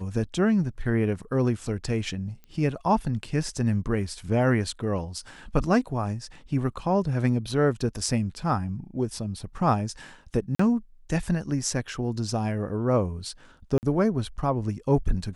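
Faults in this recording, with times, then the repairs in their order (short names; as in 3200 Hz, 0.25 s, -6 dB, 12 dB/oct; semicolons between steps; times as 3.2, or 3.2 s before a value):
2.44 pop -32 dBFS
10.55–10.59 gap 44 ms
13.78–13.83 gap 49 ms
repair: de-click; interpolate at 10.55, 44 ms; interpolate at 13.78, 49 ms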